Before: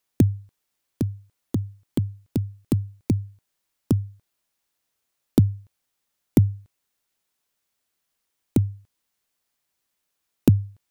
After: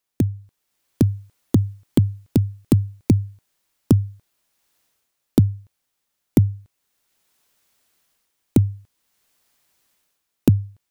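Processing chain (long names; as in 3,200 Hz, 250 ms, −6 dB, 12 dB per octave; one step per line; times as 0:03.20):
automatic gain control gain up to 14 dB
level −2.5 dB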